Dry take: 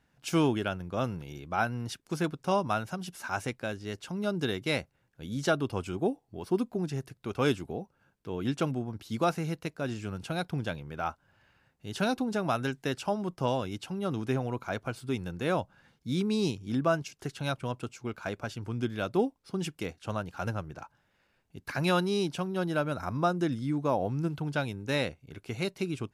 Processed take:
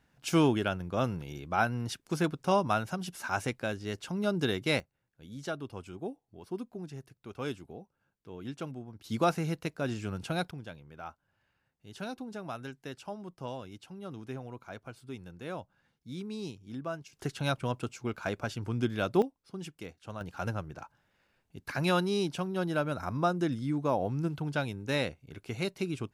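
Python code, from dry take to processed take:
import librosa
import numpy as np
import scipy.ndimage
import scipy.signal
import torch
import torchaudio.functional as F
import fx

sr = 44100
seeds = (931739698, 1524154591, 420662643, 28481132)

y = fx.gain(x, sr, db=fx.steps((0.0, 1.0), (4.8, -9.5), (9.04, 0.5), (10.51, -10.5), (17.13, 1.5), (19.22, -8.0), (20.21, -1.0)))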